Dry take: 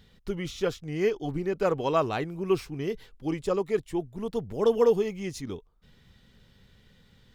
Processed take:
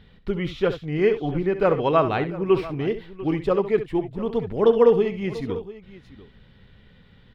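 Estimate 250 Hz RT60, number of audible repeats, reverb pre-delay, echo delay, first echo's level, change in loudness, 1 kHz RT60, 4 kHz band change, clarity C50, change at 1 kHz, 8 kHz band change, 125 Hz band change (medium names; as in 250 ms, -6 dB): no reverb, 2, no reverb, 67 ms, -11.5 dB, +6.0 dB, no reverb, +2.5 dB, no reverb, +6.0 dB, under -10 dB, +6.5 dB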